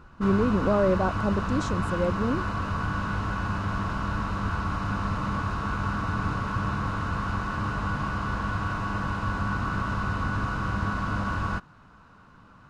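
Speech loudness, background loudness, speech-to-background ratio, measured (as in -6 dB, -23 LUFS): -27.0 LUFS, -29.5 LUFS, 2.5 dB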